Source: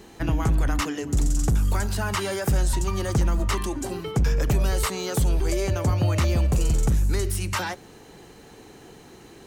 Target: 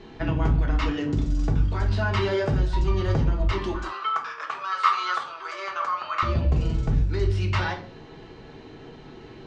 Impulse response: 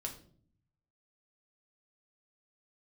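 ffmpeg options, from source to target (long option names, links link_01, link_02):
-filter_complex "[0:a]lowpass=frequency=4400:width=0.5412,lowpass=frequency=4400:width=1.3066,acompressor=threshold=-23dB:ratio=6,asettb=1/sr,asplit=3[link_01][link_02][link_03];[link_01]atrim=end=3.744[link_04];[link_02]atrim=start=3.74:end=6.23,asetpts=PTS-STARTPTS,afade=type=in:duration=0.004:curve=qsin,afade=type=out:start_time=2.486:duration=0.004:curve=qsin,highpass=frequency=1200:width_type=q:width=8.2[link_05];[link_03]atrim=start=6.226[link_06];[link_04][link_05]acrossfade=duration=0.004:curve1=hsin:curve2=qsin[link_07];[link_07][link_06]acrossfade=duration=0.004:curve1=qsin:curve2=hsin[link_08];[1:a]atrim=start_sample=2205,afade=type=out:start_time=0.23:duration=0.01,atrim=end_sample=10584[link_09];[link_08][link_09]afir=irnorm=-1:irlink=0,volume=3dB"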